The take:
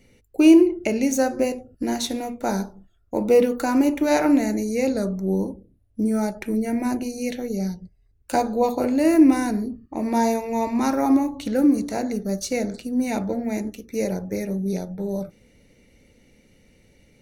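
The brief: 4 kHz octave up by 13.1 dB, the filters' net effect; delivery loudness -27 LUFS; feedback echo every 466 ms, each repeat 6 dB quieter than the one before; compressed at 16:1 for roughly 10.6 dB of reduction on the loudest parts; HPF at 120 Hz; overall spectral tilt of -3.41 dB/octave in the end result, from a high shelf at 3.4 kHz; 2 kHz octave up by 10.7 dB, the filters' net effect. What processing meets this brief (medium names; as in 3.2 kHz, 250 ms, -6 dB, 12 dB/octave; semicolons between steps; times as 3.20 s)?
high-pass 120 Hz; peaking EQ 2 kHz +8.5 dB; treble shelf 3.4 kHz +8.5 dB; peaking EQ 4 kHz +7.5 dB; compression 16:1, threshold -18 dBFS; feedback delay 466 ms, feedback 50%, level -6 dB; trim -3.5 dB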